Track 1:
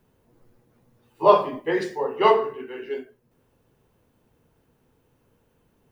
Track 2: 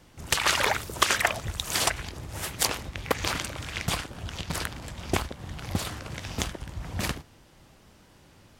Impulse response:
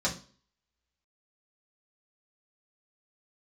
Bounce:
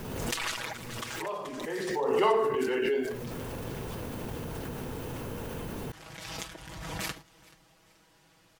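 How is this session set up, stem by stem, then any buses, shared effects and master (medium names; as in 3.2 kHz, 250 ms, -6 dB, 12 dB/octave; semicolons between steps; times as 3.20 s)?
1.59 s -23.5 dB -> 2.20 s -11.5 dB, 0.00 s, no send, no echo send, level flattener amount 70%
-6.0 dB, 0.00 s, no send, echo send -23.5 dB, bass shelf 390 Hz -8.5 dB; comb 6.2 ms, depth 83%; auto duck -19 dB, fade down 1.45 s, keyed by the first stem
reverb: none
echo: feedback delay 431 ms, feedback 34%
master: swell ahead of each attack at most 31 dB/s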